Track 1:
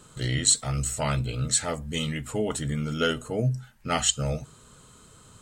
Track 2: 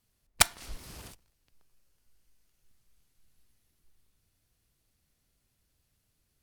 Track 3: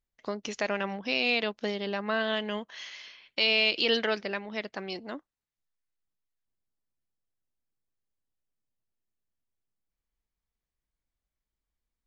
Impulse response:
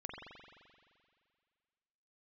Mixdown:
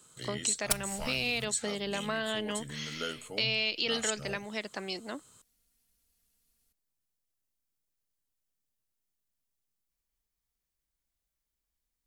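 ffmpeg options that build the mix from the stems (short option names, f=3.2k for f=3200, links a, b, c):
-filter_complex "[0:a]highpass=f=210:p=1,volume=-11dB[a];[1:a]aecho=1:1:4.3:0.91,adelay=300,volume=-8dB[b];[2:a]volume=-1.5dB[c];[a][b][c]amix=inputs=3:normalize=0,highshelf=f=4.5k:g=10.5,acrossover=split=180[d][e];[e]acompressor=threshold=-32dB:ratio=2[f];[d][f]amix=inputs=2:normalize=0"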